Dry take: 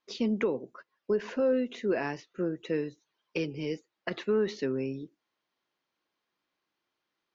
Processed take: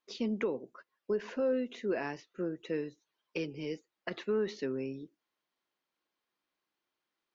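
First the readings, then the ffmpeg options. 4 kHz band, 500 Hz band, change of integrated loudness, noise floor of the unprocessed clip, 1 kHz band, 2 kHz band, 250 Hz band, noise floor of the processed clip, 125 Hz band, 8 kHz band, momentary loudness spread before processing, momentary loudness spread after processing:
-4.0 dB, -4.0 dB, -4.5 dB, -85 dBFS, -4.0 dB, -4.0 dB, -4.5 dB, under -85 dBFS, -6.0 dB, no reading, 11 LU, 11 LU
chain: -af "equalizer=f=110:w=1.2:g=-3.5,volume=0.631"

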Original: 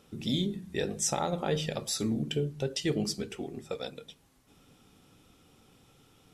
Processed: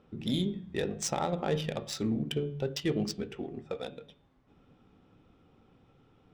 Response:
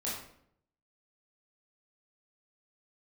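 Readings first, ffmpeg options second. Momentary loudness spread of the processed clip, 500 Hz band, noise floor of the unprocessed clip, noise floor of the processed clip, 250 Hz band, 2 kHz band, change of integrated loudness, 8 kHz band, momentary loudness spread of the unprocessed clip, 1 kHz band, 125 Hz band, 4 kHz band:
9 LU, -0.5 dB, -63 dBFS, -65 dBFS, 0.0 dB, -1.5 dB, -1.0 dB, -6.0 dB, 9 LU, -0.5 dB, -0.5 dB, -3.0 dB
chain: -af "adynamicsmooth=sensitivity=5:basefreq=2100,bandreject=f=142.6:t=h:w=4,bandreject=f=285.2:t=h:w=4,bandreject=f=427.8:t=h:w=4,bandreject=f=570.4:t=h:w=4,bandreject=f=713:t=h:w=4,bandreject=f=855.6:t=h:w=4,bandreject=f=998.2:t=h:w=4,bandreject=f=1140.8:t=h:w=4,bandreject=f=1283.4:t=h:w=4,bandreject=f=1426:t=h:w=4,bandreject=f=1568.6:t=h:w=4,bandreject=f=1711.2:t=h:w=4,bandreject=f=1853.8:t=h:w=4,bandreject=f=1996.4:t=h:w=4,bandreject=f=2139:t=h:w=4,bandreject=f=2281.6:t=h:w=4,bandreject=f=2424.2:t=h:w=4,bandreject=f=2566.8:t=h:w=4,bandreject=f=2709.4:t=h:w=4,bandreject=f=2852:t=h:w=4,bandreject=f=2994.6:t=h:w=4,bandreject=f=3137.2:t=h:w=4,bandreject=f=3279.8:t=h:w=4,bandreject=f=3422.4:t=h:w=4,bandreject=f=3565:t=h:w=4,bandreject=f=3707.6:t=h:w=4"

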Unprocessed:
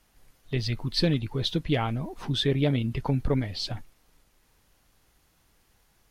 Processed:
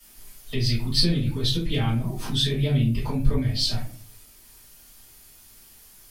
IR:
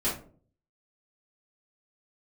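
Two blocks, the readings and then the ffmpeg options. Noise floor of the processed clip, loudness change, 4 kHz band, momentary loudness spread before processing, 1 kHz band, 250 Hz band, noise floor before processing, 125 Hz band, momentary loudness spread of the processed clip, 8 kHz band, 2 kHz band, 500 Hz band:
-51 dBFS, +3.5 dB, +6.0 dB, 8 LU, -2.0 dB, +1.5 dB, -66 dBFS, +4.0 dB, 6 LU, +10.0 dB, 0.0 dB, -2.5 dB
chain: -filter_complex "[1:a]atrim=start_sample=2205[s0];[0:a][s0]afir=irnorm=-1:irlink=0,acrossover=split=170[s1][s2];[s2]acompressor=threshold=0.0224:ratio=2[s3];[s1][s3]amix=inputs=2:normalize=0,crystalizer=i=7:c=0,volume=0.531"

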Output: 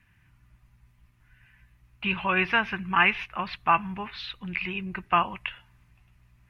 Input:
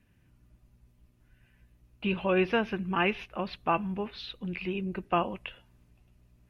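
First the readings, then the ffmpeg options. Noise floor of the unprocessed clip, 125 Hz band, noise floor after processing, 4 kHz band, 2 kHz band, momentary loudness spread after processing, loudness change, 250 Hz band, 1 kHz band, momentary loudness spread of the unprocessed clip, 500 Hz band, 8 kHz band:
-66 dBFS, -0.5 dB, -63 dBFS, +5.5 dB, +9.0 dB, 14 LU, +4.5 dB, -2.5 dB, +6.5 dB, 11 LU, -5.0 dB, no reading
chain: -af "equalizer=f=125:t=o:w=1:g=3,equalizer=f=250:t=o:w=1:g=-5,equalizer=f=500:t=o:w=1:g=-11,equalizer=f=1000:t=o:w=1:g=7,equalizer=f=2000:t=o:w=1:g=9,volume=1.19"

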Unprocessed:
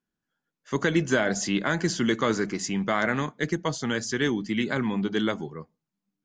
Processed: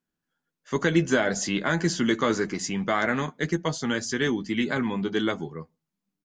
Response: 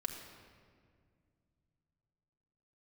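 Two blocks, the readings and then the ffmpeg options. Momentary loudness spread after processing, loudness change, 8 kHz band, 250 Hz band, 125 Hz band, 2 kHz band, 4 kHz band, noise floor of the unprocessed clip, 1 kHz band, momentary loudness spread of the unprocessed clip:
5 LU, +0.5 dB, +0.5 dB, +0.5 dB, +0.5 dB, +0.5 dB, +0.5 dB, under -85 dBFS, +0.5 dB, 5 LU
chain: -filter_complex "[0:a]asplit=2[s0][s1];[s1]adelay=12,volume=0.355[s2];[s0][s2]amix=inputs=2:normalize=0"

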